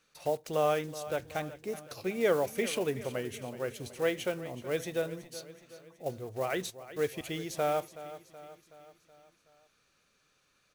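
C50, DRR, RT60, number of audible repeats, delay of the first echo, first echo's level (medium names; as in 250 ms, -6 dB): no reverb, no reverb, no reverb, 4, 374 ms, -15.0 dB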